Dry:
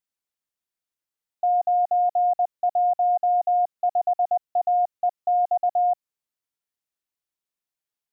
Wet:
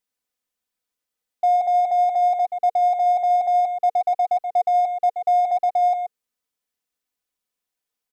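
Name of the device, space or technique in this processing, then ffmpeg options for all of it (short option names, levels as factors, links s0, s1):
parallel distortion: -filter_complex "[0:a]equalizer=f=460:w=6.1:g=4,aecho=1:1:4:0.52,asplit=2[s0][s1];[s1]adelay=128.3,volume=0.316,highshelf=f=4000:g=-2.89[s2];[s0][s2]amix=inputs=2:normalize=0,asplit=2[s3][s4];[s4]asoftclip=type=hard:threshold=0.0266,volume=0.447[s5];[s3][s5]amix=inputs=2:normalize=0"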